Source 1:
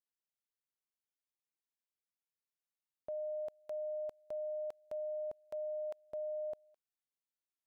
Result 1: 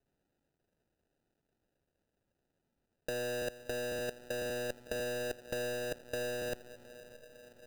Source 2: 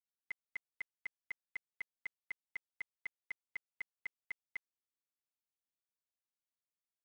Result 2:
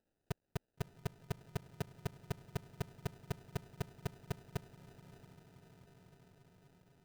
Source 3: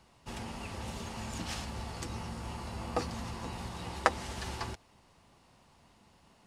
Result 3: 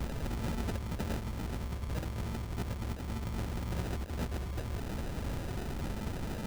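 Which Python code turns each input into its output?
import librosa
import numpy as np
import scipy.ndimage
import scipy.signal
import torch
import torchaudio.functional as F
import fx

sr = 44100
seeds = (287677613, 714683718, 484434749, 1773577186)

y = fx.halfwave_hold(x, sr)
y = fx.low_shelf(y, sr, hz=81.0, db=11.5)
y = fx.over_compress(y, sr, threshold_db=-42.0, ratio=-1.0)
y = fx.echo_diffused(y, sr, ms=636, feedback_pct=71, wet_db=-15)
y = fx.sample_hold(y, sr, seeds[0], rate_hz=1100.0, jitter_pct=0)
y = F.gain(torch.from_numpy(y), 6.0).numpy()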